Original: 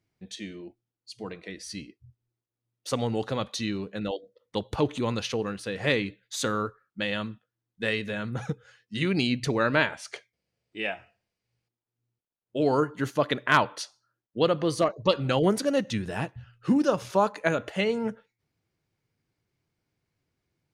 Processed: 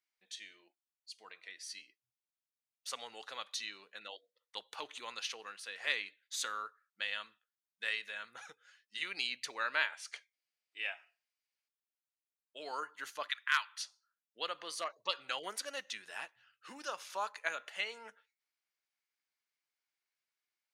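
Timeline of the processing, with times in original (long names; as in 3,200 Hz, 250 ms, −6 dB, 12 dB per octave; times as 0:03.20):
0:13.28–0:13.81: high-pass filter 1,200 Hz 24 dB per octave
whole clip: high-pass filter 1,300 Hz 12 dB per octave; level −5.5 dB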